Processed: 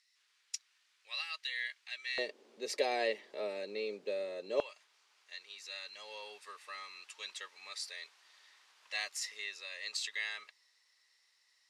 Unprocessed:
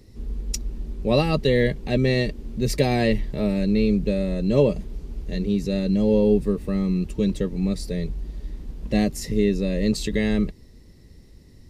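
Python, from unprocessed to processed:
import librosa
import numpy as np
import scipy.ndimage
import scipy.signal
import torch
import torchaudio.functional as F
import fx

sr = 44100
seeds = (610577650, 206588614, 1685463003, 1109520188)

y = fx.highpass(x, sr, hz=fx.steps((0.0, 1500.0), (2.18, 460.0), (4.6, 1100.0)), slope=24)
y = fx.rider(y, sr, range_db=5, speed_s=2.0)
y = scipy.signal.sosfilt(scipy.signal.butter(2, 7600.0, 'lowpass', fs=sr, output='sos'), y)
y = y * 10.0 ** (-6.5 / 20.0)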